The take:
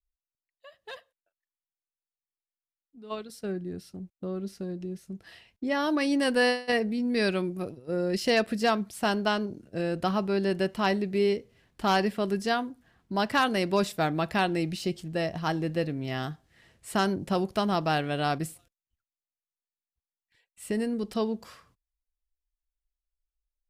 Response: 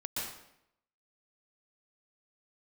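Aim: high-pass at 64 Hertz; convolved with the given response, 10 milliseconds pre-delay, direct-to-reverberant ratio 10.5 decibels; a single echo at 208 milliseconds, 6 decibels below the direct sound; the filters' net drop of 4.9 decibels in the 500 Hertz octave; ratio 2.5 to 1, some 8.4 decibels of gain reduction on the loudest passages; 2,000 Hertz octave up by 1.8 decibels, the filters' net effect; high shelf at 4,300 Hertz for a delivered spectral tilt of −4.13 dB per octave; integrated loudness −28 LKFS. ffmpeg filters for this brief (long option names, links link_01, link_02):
-filter_complex "[0:a]highpass=64,equalizer=frequency=500:width_type=o:gain=-6.5,equalizer=frequency=2000:width_type=o:gain=3.5,highshelf=frequency=4300:gain=-4,acompressor=threshold=-33dB:ratio=2.5,aecho=1:1:208:0.501,asplit=2[link_01][link_02];[1:a]atrim=start_sample=2205,adelay=10[link_03];[link_02][link_03]afir=irnorm=-1:irlink=0,volume=-13.5dB[link_04];[link_01][link_04]amix=inputs=2:normalize=0,volume=6.5dB"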